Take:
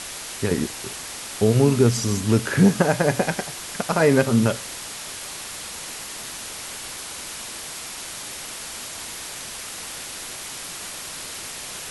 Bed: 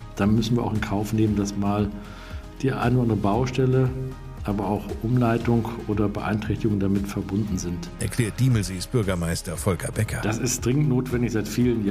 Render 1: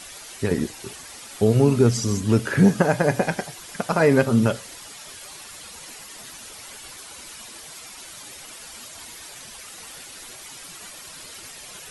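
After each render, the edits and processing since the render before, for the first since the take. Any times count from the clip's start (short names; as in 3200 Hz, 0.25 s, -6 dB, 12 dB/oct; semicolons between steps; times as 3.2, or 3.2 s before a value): denoiser 10 dB, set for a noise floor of -35 dBFS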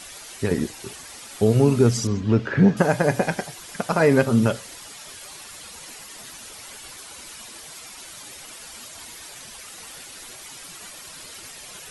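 2.07–2.77 air absorption 200 m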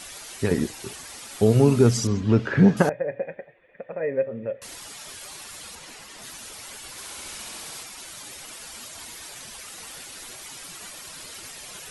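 2.89–4.62 vocal tract filter e; 5.75–6.22 high shelf 7900 Hz -10 dB; 6.89–7.83 flutter echo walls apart 11.6 m, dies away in 1.2 s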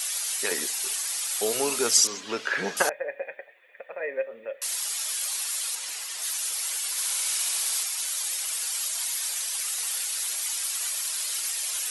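HPF 440 Hz 12 dB/oct; tilt +4 dB/oct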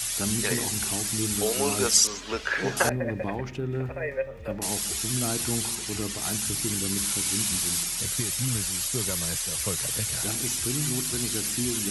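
add bed -10 dB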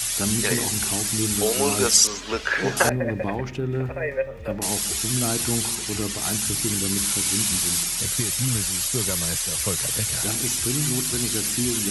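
gain +4 dB; limiter -3 dBFS, peak gain reduction 2 dB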